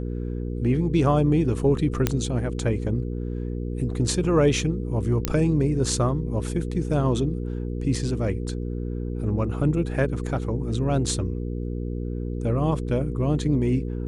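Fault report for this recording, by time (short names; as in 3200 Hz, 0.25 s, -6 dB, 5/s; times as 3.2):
hum 60 Hz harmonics 8 -29 dBFS
2.07 pop -6 dBFS
5.25 pop -7 dBFS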